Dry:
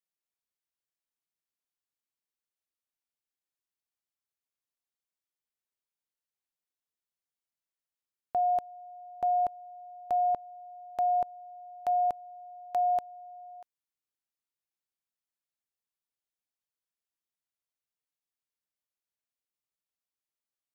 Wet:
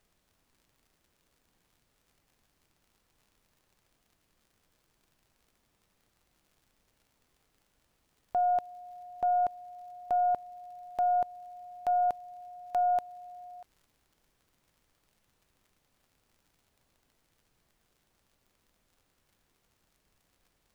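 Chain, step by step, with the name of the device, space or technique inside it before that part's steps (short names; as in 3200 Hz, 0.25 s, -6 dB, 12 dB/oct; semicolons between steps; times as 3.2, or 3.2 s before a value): record under a worn stylus (tracing distortion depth 0.067 ms; crackle; pink noise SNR 37 dB)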